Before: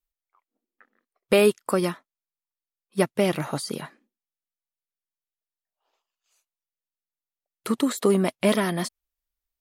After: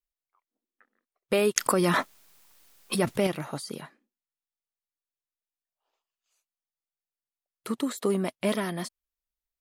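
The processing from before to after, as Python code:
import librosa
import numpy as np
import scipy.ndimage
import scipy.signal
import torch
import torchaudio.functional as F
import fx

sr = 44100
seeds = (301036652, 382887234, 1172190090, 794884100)

y = fx.env_flatten(x, sr, amount_pct=100, at=(1.56, 3.27))
y = y * 10.0 ** (-6.0 / 20.0)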